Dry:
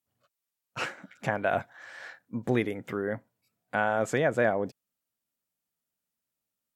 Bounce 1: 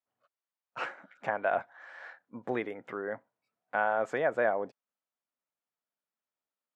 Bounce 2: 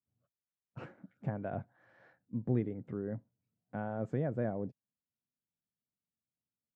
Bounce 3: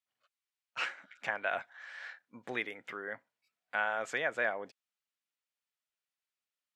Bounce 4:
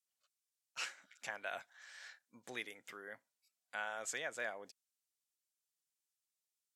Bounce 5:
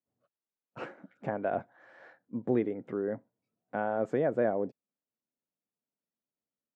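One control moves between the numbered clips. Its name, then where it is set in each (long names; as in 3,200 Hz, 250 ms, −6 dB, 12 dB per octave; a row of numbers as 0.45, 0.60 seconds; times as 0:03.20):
resonant band-pass, frequency: 950, 120, 2,400, 6,700, 340 Hertz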